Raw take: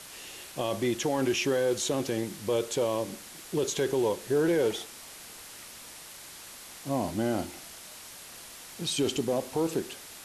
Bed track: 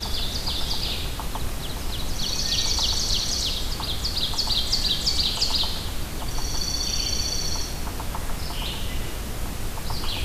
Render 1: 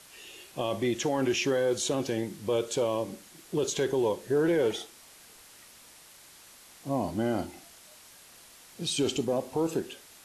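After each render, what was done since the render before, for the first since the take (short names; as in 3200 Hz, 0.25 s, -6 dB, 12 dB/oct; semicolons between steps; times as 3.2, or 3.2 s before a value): noise print and reduce 7 dB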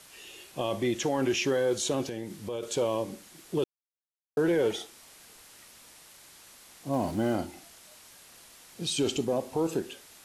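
2.04–2.63 compressor 2.5:1, threshold -34 dBFS; 3.64–4.37 mute; 6.93–7.36 G.711 law mismatch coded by mu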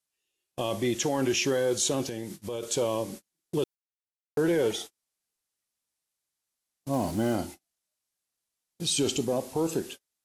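gate -41 dBFS, range -37 dB; tone controls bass +2 dB, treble +6 dB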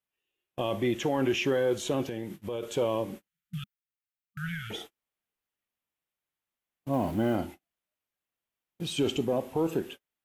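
3.28–4.71 spectral delete 200–1200 Hz; band shelf 6700 Hz -13 dB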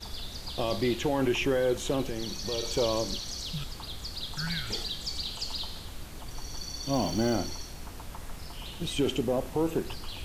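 add bed track -12 dB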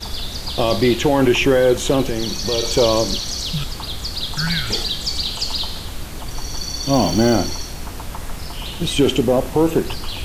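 gain +12 dB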